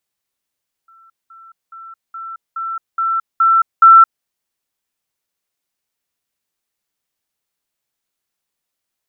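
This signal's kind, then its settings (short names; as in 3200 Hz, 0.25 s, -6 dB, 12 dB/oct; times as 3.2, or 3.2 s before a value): level ladder 1340 Hz -44.5 dBFS, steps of 6 dB, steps 8, 0.22 s 0.20 s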